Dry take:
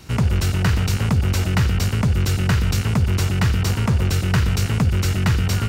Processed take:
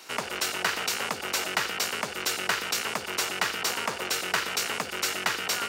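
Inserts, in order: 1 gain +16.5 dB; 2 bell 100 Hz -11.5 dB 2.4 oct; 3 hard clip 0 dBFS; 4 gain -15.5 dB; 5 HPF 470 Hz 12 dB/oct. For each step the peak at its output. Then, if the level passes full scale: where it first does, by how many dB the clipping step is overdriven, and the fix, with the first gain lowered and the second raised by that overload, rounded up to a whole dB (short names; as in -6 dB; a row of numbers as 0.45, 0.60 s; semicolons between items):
+6.0, +6.5, 0.0, -15.5, -11.0 dBFS; step 1, 6.5 dB; step 1 +9.5 dB, step 4 -8.5 dB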